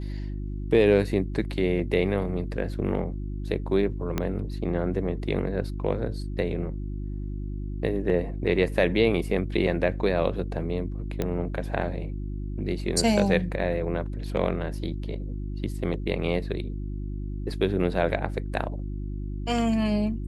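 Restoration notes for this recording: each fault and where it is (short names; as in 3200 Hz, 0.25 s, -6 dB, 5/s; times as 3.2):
hum 50 Hz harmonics 7 -32 dBFS
4.18 pop -12 dBFS
11.22 pop -14 dBFS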